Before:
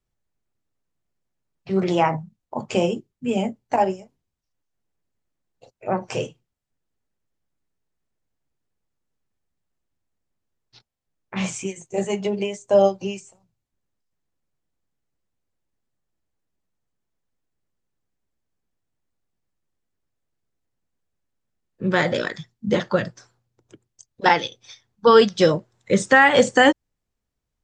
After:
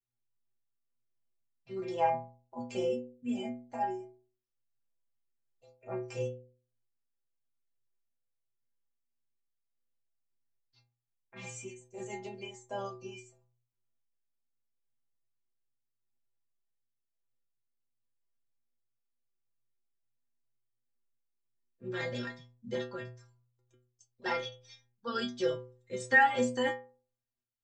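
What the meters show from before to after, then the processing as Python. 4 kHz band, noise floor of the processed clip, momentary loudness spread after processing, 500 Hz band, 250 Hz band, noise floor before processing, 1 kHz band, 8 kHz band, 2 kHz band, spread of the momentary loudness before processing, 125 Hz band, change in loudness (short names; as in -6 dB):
-15.5 dB, -84 dBFS, 16 LU, -15.5 dB, -15.0 dB, -80 dBFS, -12.0 dB, -14.0 dB, -11.0 dB, 18 LU, -15.5 dB, -13.5 dB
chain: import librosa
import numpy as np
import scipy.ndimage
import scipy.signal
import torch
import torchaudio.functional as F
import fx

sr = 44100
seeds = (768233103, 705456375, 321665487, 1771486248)

y = fx.tremolo_random(x, sr, seeds[0], hz=3.5, depth_pct=55)
y = fx.stiff_resonator(y, sr, f0_hz=120.0, decay_s=0.5, stiffness=0.008)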